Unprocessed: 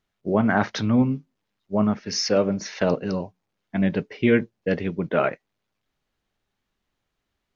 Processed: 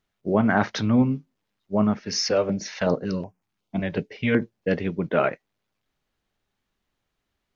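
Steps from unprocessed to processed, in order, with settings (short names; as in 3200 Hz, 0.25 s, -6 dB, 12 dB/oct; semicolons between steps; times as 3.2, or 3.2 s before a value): 2.31–4.42 stepped notch 5.4 Hz 230–3900 Hz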